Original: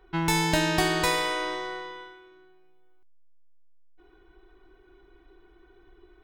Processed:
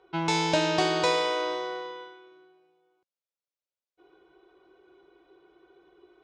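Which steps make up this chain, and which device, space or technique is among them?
full-range speaker at full volume (loudspeaker Doppler distortion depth 0.1 ms; cabinet simulation 170–6800 Hz, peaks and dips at 240 Hz -10 dB, 540 Hz +9 dB, 1.8 kHz -8 dB)

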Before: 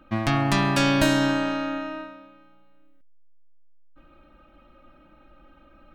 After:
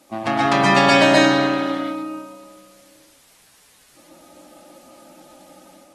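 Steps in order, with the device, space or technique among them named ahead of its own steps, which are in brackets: local Wiener filter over 25 samples; filmed off a television (band-pass 290–7700 Hz; peaking EQ 740 Hz +8 dB 0.44 oct; reverberation RT60 0.30 s, pre-delay 119 ms, DRR -4 dB; white noise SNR 33 dB; level rider gain up to 5 dB; AAC 32 kbps 44.1 kHz)

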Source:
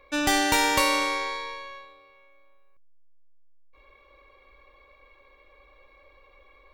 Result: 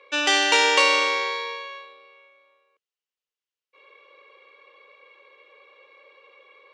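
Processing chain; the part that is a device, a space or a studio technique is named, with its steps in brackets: phone speaker on a table (cabinet simulation 390–7000 Hz, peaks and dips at 460 Hz +7 dB, 690 Hz -10 dB, 2.9 kHz +8 dB); trim +3.5 dB

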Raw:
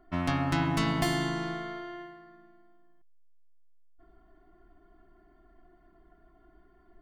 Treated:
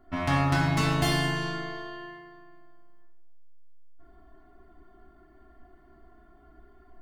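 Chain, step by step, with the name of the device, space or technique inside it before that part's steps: 1.51–2.15 s: band-stop 1.3 kHz, Q 5.7; bathroom (reverberation RT60 0.85 s, pre-delay 3 ms, DRR -3.5 dB)

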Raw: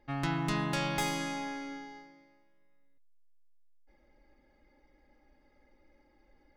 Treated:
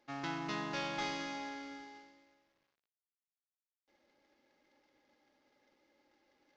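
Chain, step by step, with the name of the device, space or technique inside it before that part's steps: early wireless headset (high-pass 250 Hz 12 dB/octave; CVSD coder 32 kbps); trim -4.5 dB

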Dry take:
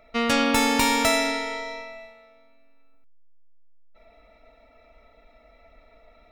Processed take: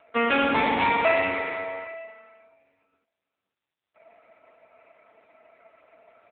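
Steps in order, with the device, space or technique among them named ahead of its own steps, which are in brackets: satellite phone (band-pass 320–3300 Hz; delay 493 ms -24 dB; trim +4 dB; AMR-NB 5.9 kbps 8 kHz)

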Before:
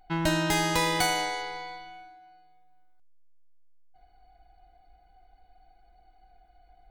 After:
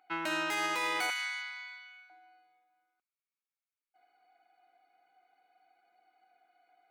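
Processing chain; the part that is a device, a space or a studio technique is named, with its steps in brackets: laptop speaker (high-pass 260 Hz 24 dB/octave; peaking EQ 1.3 kHz +10.5 dB 0.49 oct; peaking EQ 2.4 kHz +10 dB 0.52 oct; peak limiter -15 dBFS, peak gain reduction 6 dB); 1.10–2.10 s: high-pass 1.3 kHz 24 dB/octave; trim -8 dB

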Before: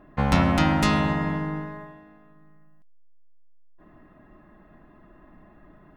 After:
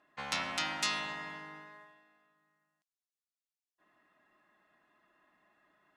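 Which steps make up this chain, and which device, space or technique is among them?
piezo pickup straight into a mixer (low-pass 6.3 kHz 12 dB/octave; differentiator); trim +3.5 dB

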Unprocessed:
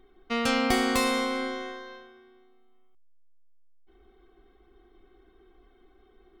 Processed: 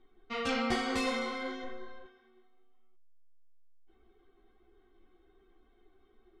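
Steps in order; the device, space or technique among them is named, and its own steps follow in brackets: 1.63–2.05 s: tilt EQ -2.5 dB/octave; string-machine ensemble chorus (three-phase chorus; low-pass 6.9 kHz 12 dB/octave); trim -3.5 dB

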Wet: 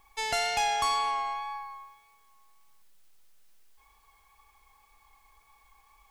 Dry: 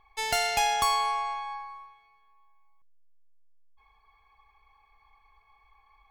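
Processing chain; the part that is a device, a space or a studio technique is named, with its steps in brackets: compact cassette (saturation -21 dBFS, distortion -17 dB; low-pass 9.8 kHz; wow and flutter 16 cents; white noise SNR 35 dB)

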